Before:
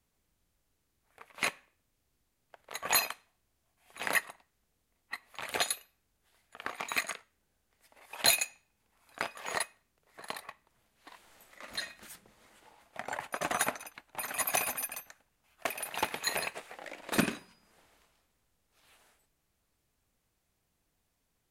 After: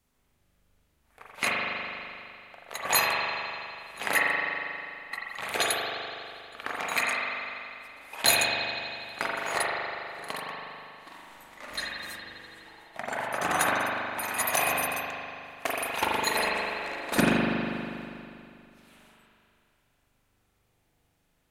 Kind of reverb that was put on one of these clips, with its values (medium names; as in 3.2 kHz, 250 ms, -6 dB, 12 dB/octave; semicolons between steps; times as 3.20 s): spring tank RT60 2.6 s, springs 40 ms, chirp 45 ms, DRR -4.5 dB; trim +2.5 dB